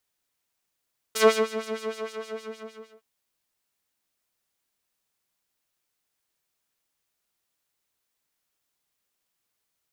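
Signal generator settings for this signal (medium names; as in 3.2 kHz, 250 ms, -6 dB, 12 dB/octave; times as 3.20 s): synth patch with filter wobble A4, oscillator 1 triangle, interval -12 st, sub -7.5 dB, filter bandpass, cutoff 1.8 kHz, Q 0.78, filter envelope 1.5 oct, filter decay 0.07 s, filter sustain 35%, attack 16 ms, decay 0.30 s, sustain -16 dB, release 1.47 s, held 0.40 s, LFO 6.5 Hz, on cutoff 1.6 oct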